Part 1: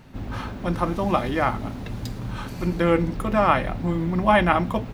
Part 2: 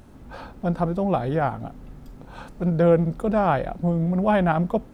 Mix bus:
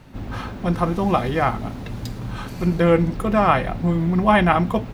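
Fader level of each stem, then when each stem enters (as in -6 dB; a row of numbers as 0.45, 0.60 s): +1.5, -6.0 dB; 0.00, 0.00 s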